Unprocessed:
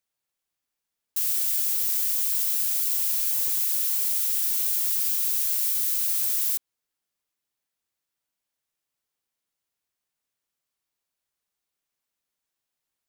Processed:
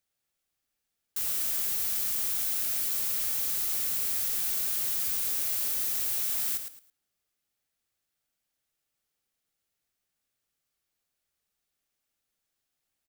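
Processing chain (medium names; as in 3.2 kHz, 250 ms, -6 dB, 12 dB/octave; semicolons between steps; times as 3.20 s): 5.93–6.53 s: frequency shift -28 Hz; saturation -28.5 dBFS, distortion -8 dB; bass shelf 120 Hz +6 dB; band-stop 990 Hz, Q 7; feedback delay 109 ms, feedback 24%, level -8 dB; trim +1 dB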